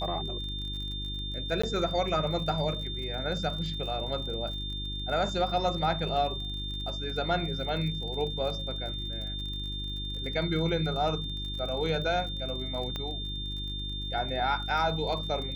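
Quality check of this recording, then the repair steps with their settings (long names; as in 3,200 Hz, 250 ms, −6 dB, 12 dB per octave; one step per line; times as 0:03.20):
surface crackle 38 per second −37 dBFS
mains hum 50 Hz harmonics 7 −37 dBFS
whistle 3,600 Hz −36 dBFS
0:01.62–0:01.64: drop-out 15 ms
0:12.96: click −20 dBFS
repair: click removal
hum removal 50 Hz, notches 7
notch filter 3,600 Hz, Q 30
repair the gap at 0:01.62, 15 ms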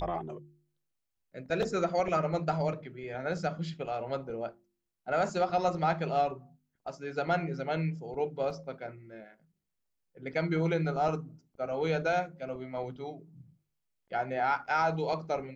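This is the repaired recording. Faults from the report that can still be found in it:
none of them is left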